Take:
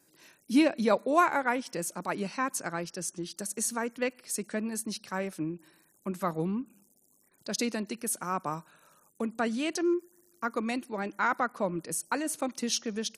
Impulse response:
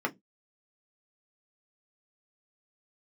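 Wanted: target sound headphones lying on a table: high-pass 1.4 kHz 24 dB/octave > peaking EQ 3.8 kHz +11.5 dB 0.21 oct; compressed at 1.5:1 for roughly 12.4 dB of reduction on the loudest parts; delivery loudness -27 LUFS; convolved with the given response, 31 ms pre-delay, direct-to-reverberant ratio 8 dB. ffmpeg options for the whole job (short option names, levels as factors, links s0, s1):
-filter_complex "[0:a]acompressor=threshold=0.002:ratio=1.5,asplit=2[s0][s1];[1:a]atrim=start_sample=2205,adelay=31[s2];[s1][s2]afir=irnorm=-1:irlink=0,volume=0.158[s3];[s0][s3]amix=inputs=2:normalize=0,highpass=f=1400:w=0.5412,highpass=f=1400:w=1.3066,equalizer=f=3800:t=o:w=0.21:g=11.5,volume=7.5"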